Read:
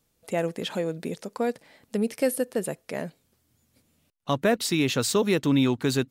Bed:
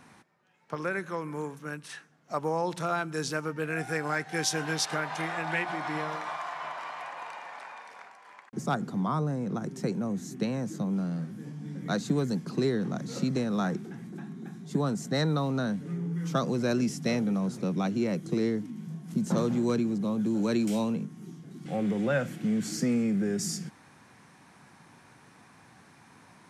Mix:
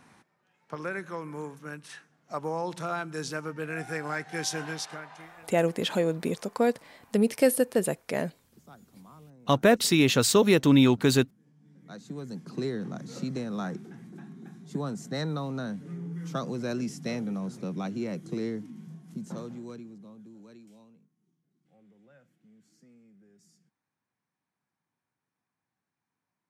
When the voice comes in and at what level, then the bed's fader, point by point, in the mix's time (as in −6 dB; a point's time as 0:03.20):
5.20 s, +2.5 dB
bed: 0:04.62 −2.5 dB
0:05.62 −23 dB
0:11.46 −23 dB
0:12.59 −4.5 dB
0:18.79 −4.5 dB
0:21.17 −32 dB